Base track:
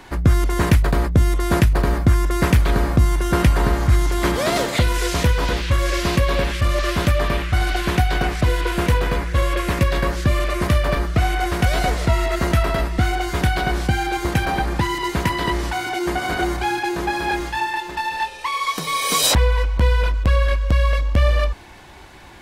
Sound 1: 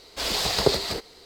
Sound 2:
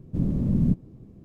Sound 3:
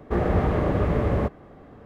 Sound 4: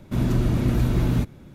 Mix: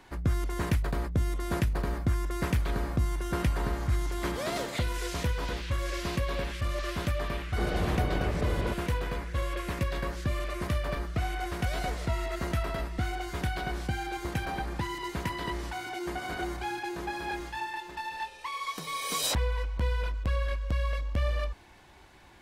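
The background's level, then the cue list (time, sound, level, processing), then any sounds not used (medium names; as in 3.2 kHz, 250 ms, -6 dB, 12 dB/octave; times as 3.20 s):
base track -12.5 dB
1.13 s: add 2 -9.5 dB + high-pass 660 Hz
7.46 s: add 3 -9 dB
not used: 1, 4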